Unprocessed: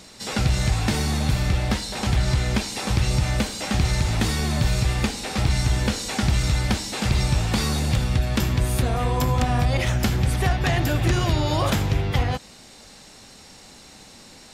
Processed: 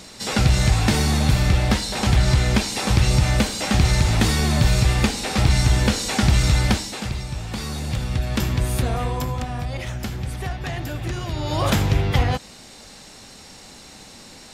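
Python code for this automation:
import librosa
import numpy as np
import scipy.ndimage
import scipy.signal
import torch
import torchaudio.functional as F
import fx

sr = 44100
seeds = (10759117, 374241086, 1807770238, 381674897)

y = fx.gain(x, sr, db=fx.line((6.69, 4.0), (7.24, -9.0), (8.41, 0.0), (8.94, 0.0), (9.5, -7.0), (11.29, -7.0), (11.73, 3.0)))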